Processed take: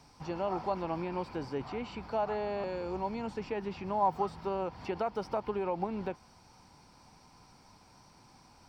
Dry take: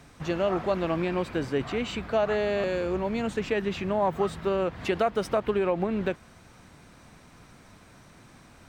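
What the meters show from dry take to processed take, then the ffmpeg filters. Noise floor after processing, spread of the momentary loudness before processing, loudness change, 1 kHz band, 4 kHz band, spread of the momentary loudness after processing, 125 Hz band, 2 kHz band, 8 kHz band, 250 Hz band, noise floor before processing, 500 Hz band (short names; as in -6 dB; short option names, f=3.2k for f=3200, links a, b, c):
-60 dBFS, 4 LU, -7.5 dB, -2.0 dB, -11.5 dB, 8 LU, -8.5 dB, -12.0 dB, under -10 dB, -8.5 dB, -54 dBFS, -8.5 dB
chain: -filter_complex "[0:a]acrossover=split=2700[a][b];[b]acompressor=threshold=-51dB:ratio=4:attack=1:release=60[c];[a][c]amix=inputs=2:normalize=0,superequalizer=9b=2.82:11b=0.631:14b=3.16,volume=-8.5dB"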